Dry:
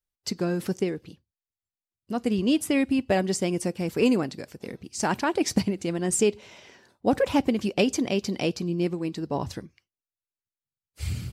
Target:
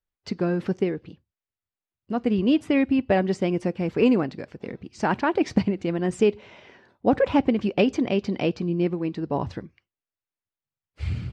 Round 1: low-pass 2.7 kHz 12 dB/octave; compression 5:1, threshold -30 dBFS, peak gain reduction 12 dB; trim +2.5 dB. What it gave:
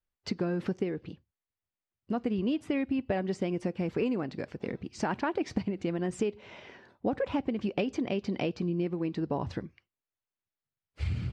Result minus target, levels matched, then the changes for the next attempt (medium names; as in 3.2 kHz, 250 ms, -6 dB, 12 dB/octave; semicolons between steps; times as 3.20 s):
compression: peak gain reduction +12 dB
remove: compression 5:1, threshold -30 dBFS, peak gain reduction 12 dB